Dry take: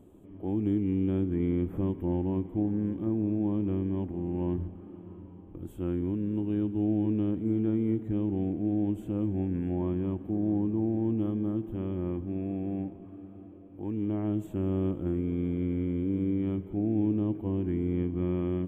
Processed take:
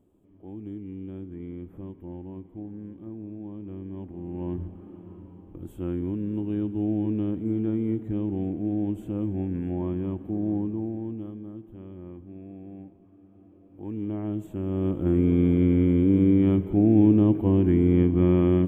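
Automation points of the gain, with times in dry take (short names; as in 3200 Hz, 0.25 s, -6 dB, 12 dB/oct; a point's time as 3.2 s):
3.58 s -10 dB
4.73 s +1 dB
10.55 s +1 dB
11.45 s -9.5 dB
13.16 s -9.5 dB
13.93 s -0.5 dB
14.65 s -0.5 dB
15.23 s +9.5 dB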